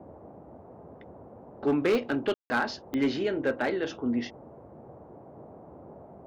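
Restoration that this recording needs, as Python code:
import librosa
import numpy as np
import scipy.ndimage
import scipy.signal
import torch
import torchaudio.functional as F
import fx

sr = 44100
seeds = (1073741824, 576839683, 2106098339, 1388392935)

y = fx.fix_declip(x, sr, threshold_db=-19.0)
y = fx.fix_declick_ar(y, sr, threshold=10.0)
y = fx.fix_ambience(y, sr, seeds[0], print_start_s=0.29, print_end_s=0.79, start_s=2.34, end_s=2.5)
y = fx.noise_reduce(y, sr, print_start_s=0.29, print_end_s=0.79, reduce_db=25.0)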